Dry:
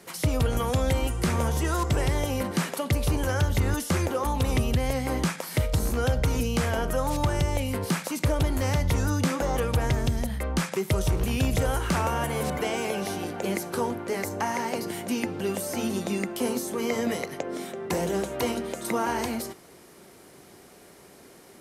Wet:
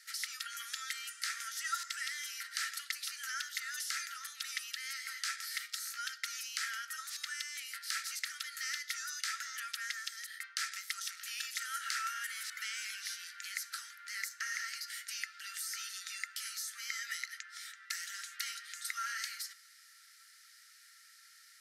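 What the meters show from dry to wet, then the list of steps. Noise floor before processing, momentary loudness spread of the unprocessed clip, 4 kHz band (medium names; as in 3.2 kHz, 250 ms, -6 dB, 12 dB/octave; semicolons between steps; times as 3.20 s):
-51 dBFS, 5 LU, -3.0 dB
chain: rippled Chebyshev high-pass 1.3 kHz, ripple 9 dB; trim +1 dB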